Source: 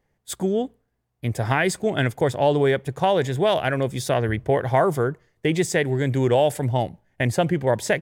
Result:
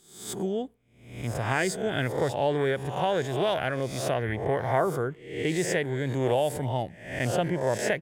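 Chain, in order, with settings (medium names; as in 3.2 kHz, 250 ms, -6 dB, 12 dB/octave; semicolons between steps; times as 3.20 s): reverse spectral sustain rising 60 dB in 0.63 s; trim -7.5 dB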